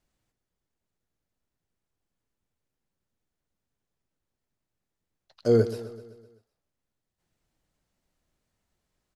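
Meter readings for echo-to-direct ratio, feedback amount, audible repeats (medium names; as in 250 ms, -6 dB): -13.0 dB, 56%, 5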